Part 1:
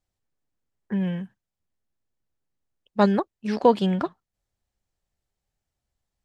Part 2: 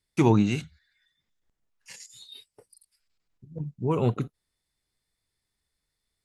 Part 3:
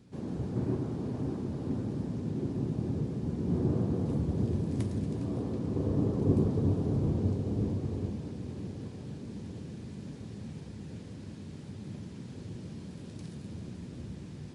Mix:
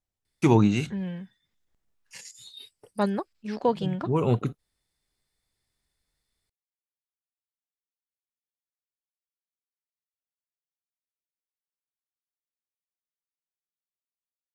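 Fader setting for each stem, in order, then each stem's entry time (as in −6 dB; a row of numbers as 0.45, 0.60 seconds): −6.5 dB, +1.0 dB, muted; 0.00 s, 0.25 s, muted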